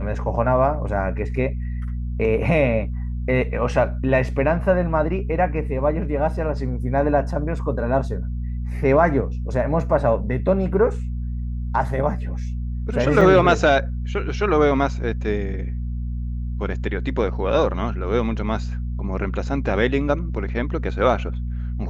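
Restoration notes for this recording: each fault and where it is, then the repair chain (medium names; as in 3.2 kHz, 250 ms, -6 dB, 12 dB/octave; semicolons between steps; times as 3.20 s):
hum 60 Hz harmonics 4 -26 dBFS
13.21 s: dropout 3.2 ms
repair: de-hum 60 Hz, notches 4; interpolate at 13.21 s, 3.2 ms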